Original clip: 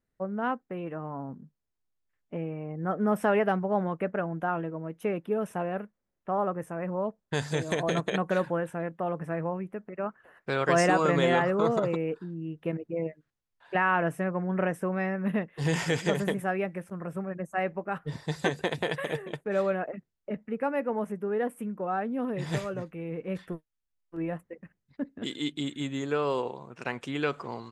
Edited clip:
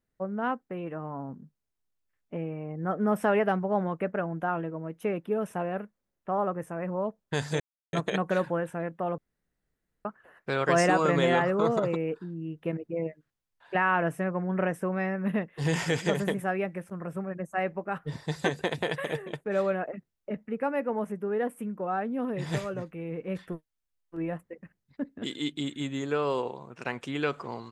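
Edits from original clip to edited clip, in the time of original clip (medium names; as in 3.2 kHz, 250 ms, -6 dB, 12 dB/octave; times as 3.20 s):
7.60–7.93 s: mute
9.18–10.05 s: room tone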